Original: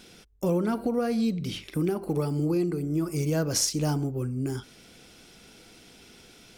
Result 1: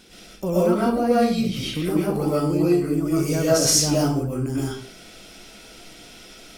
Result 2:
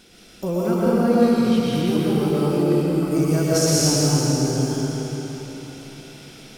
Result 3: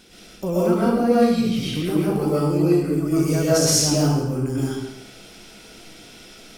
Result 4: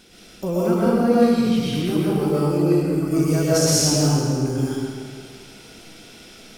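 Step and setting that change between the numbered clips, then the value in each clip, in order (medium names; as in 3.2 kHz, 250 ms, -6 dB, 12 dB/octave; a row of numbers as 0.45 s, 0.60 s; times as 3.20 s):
algorithmic reverb, RT60: 0.41 s, 4.1 s, 0.92 s, 1.9 s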